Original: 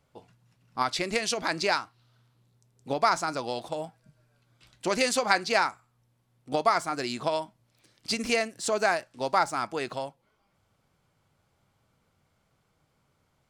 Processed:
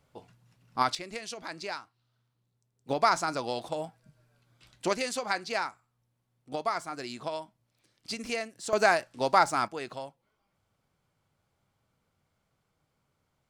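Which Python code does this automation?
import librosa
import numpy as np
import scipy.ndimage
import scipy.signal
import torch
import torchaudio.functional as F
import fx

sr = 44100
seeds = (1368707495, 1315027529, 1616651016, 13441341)

y = fx.gain(x, sr, db=fx.steps((0.0, 1.0), (0.95, -11.0), (2.89, -0.5), (4.93, -7.0), (8.73, 2.0), (9.68, -5.5)))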